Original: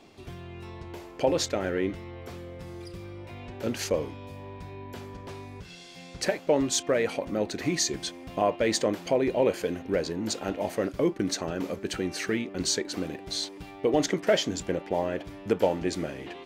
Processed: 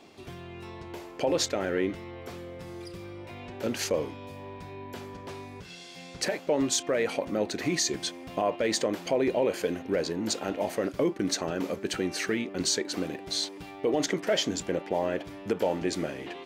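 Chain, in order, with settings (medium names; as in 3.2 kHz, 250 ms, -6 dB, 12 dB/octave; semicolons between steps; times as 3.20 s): peak limiter -17.5 dBFS, peak gain reduction 6.5 dB; bass shelf 84 Hz -12 dB; trim +1.5 dB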